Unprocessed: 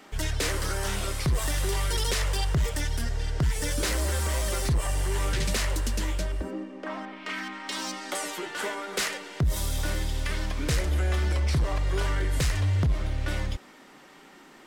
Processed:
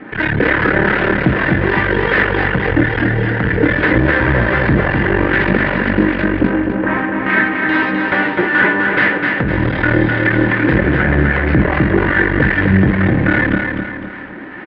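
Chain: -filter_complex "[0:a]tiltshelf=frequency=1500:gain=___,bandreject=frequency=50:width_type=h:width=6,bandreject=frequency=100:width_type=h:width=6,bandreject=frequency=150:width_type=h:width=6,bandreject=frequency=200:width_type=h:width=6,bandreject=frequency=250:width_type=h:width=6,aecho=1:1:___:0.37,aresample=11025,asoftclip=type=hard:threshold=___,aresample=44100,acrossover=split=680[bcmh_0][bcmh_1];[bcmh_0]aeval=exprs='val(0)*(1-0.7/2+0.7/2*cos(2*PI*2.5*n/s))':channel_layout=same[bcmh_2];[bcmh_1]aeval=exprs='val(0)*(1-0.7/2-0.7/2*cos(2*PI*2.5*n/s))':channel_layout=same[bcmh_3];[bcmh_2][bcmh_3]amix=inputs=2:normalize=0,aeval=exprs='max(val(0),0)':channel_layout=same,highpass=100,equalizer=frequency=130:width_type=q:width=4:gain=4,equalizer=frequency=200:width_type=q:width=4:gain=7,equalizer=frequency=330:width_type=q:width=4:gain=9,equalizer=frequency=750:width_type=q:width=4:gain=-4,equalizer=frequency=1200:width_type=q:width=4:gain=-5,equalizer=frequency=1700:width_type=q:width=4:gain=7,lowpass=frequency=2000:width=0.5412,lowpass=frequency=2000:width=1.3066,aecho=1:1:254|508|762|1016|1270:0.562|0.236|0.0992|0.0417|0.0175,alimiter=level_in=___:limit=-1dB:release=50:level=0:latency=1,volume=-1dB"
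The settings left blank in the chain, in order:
-3.5, 4, -26.5dB, 27.5dB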